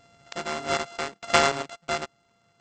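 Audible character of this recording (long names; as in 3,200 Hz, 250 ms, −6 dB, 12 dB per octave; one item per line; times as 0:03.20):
a buzz of ramps at a fixed pitch in blocks of 64 samples
chopped level 0.77 Hz, depth 65%, duty 25%
AAC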